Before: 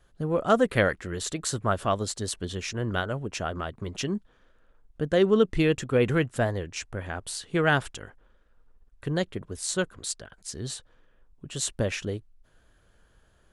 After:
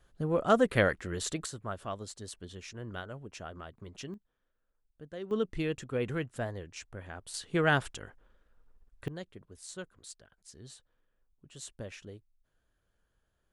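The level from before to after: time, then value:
−3 dB
from 0:01.46 −12.5 dB
from 0:04.14 −20 dB
from 0:05.31 −10 dB
from 0:07.34 −3.5 dB
from 0:09.08 −15.5 dB

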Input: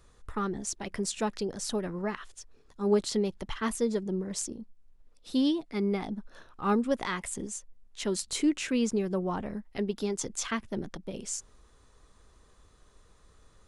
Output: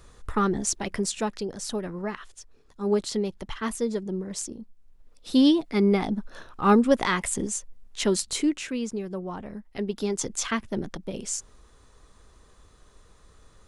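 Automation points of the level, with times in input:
0:00.71 +8 dB
0:01.36 +1 dB
0:04.50 +1 dB
0:05.48 +8 dB
0:08.04 +8 dB
0:08.80 −3 dB
0:09.40 −3 dB
0:10.16 +4.5 dB

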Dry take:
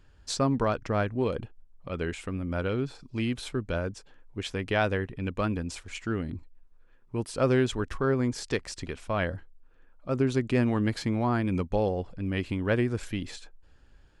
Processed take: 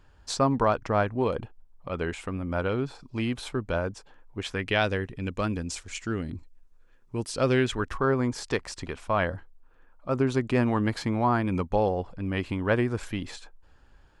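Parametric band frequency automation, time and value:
parametric band +7 dB 1.2 octaves
0:04.43 900 Hz
0:04.98 6,700 Hz
0:07.26 6,700 Hz
0:07.91 970 Hz

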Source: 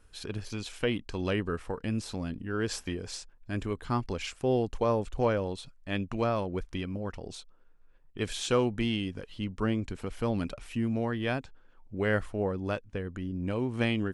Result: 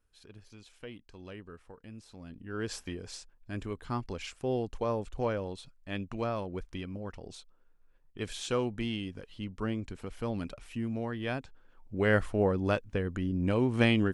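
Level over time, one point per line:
0:02.08 −16 dB
0:02.59 −4.5 dB
0:11.15 −4.5 dB
0:12.33 +3.5 dB

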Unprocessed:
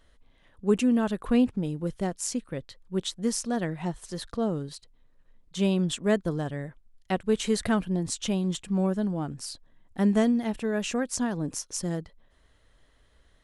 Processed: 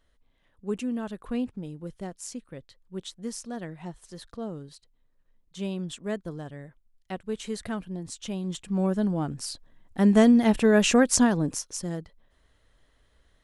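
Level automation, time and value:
0:08.16 −7.5 dB
0:09.04 +2.5 dB
0:10.01 +2.5 dB
0:10.52 +9 dB
0:11.17 +9 dB
0:11.78 −2 dB

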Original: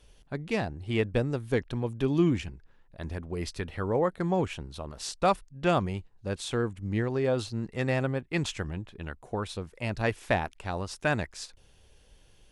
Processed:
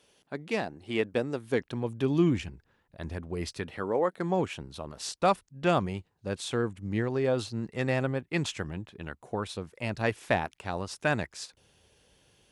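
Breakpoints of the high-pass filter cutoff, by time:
0:01.34 220 Hz
0:02.28 70 Hz
0:03.44 70 Hz
0:04.00 290 Hz
0:04.61 100 Hz

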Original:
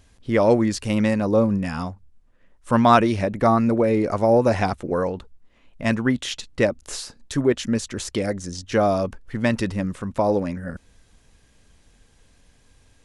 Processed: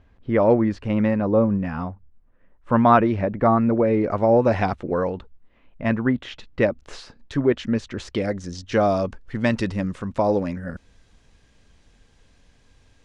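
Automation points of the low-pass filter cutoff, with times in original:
0:03.61 1,900 Hz
0:04.62 3,700 Hz
0:05.13 3,700 Hz
0:06.13 1,800 Hz
0:06.68 3,100 Hz
0:07.82 3,100 Hz
0:08.89 6,200 Hz

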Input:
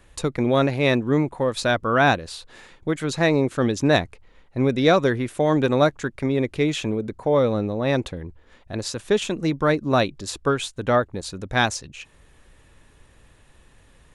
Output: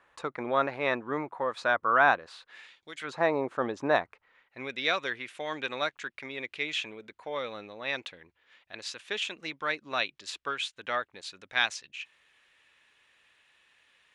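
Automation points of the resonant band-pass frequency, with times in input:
resonant band-pass, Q 1.4
0:02.28 1,200 Hz
0:02.93 4,900 Hz
0:03.14 950 Hz
0:03.86 950 Hz
0:04.68 2,600 Hz

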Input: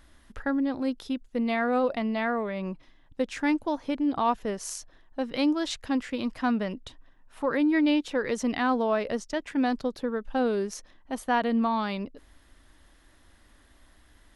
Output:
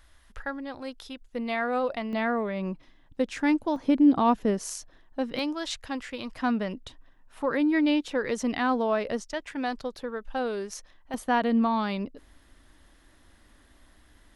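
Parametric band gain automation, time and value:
parametric band 240 Hz 1.8 octaves
−12 dB
from 0:01.22 −5.5 dB
from 0:02.13 +2 dB
from 0:03.76 +8.5 dB
from 0:04.68 +1.5 dB
from 0:05.39 −8 dB
from 0:06.35 −0.5 dB
from 0:09.22 −7.5 dB
from 0:11.14 +2 dB

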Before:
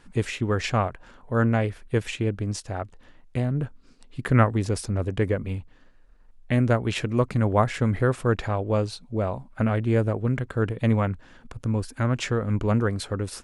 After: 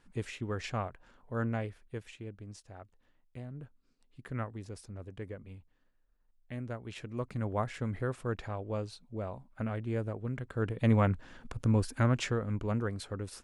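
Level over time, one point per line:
0:01.59 −11.5 dB
0:02.07 −18.5 dB
0:06.79 −18.5 dB
0:07.42 −12 dB
0:10.33 −12 dB
0:11.09 −1.5 dB
0:11.95 −1.5 dB
0:12.58 −10 dB

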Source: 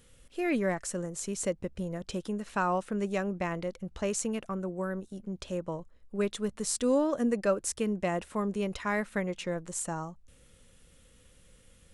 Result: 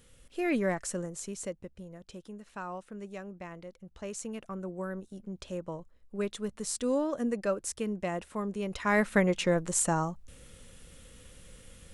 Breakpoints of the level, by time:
0:00.94 0 dB
0:01.85 −11 dB
0:03.76 −11 dB
0:04.70 −3 dB
0:08.63 −3 dB
0:09.05 +7 dB

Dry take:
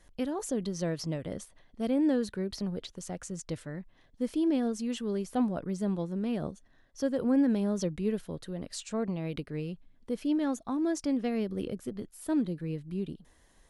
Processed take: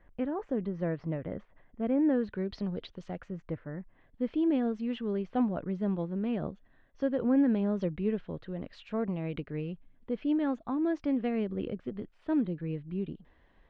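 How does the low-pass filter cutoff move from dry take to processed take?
low-pass filter 24 dB per octave
0:02.09 2,200 Hz
0:02.49 3,700 Hz
0:03.00 3,700 Hz
0:03.67 1,700 Hz
0:04.23 3,000 Hz

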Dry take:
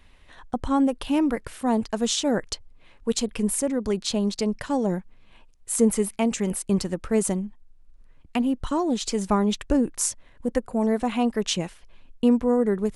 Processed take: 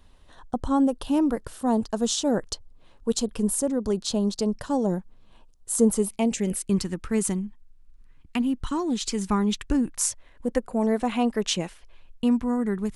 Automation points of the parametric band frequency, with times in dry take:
parametric band −12 dB 0.74 octaves
0:05.95 2,200 Hz
0:06.83 600 Hz
0:09.76 600 Hz
0:10.54 86 Hz
0:11.61 86 Hz
0:12.38 520 Hz

